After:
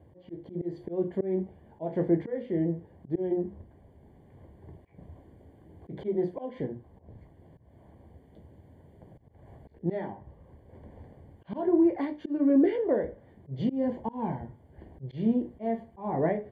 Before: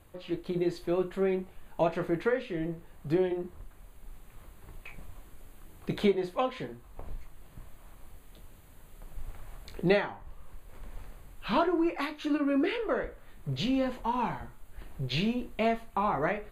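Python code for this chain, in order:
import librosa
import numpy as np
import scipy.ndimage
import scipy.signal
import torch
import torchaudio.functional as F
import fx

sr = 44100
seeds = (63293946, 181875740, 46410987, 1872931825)

y = scipy.signal.sosfilt(scipy.signal.butter(4, 71.0, 'highpass', fs=sr, output='sos'), x)
y = fx.hum_notches(y, sr, base_hz=50, count=4)
y = fx.auto_swell(y, sr, attack_ms=204.0)
y = scipy.signal.lfilter(np.full(34, 1.0 / 34), 1.0, y)
y = y * librosa.db_to_amplitude(7.0)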